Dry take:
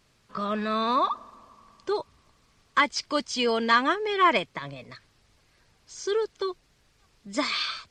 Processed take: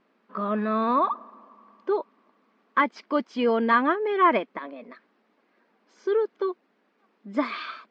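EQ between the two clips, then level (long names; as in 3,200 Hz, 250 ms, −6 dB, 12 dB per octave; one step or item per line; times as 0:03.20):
linear-phase brick-wall high-pass 190 Hz
low-pass filter 1,700 Hz 12 dB per octave
low-shelf EQ 240 Hz +6 dB
+1.5 dB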